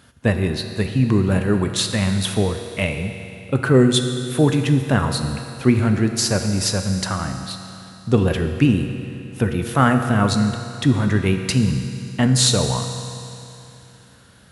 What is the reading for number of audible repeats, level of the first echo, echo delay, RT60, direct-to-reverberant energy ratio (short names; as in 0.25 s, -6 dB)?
none, none, none, 2.9 s, 5.5 dB